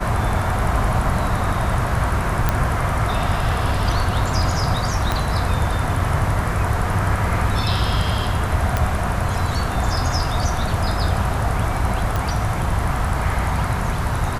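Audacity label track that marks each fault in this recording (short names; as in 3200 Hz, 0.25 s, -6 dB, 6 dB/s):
2.490000	2.490000	pop -4 dBFS
5.120000	5.120000	pop -6 dBFS
8.770000	8.770000	pop -6 dBFS
12.160000	12.160000	pop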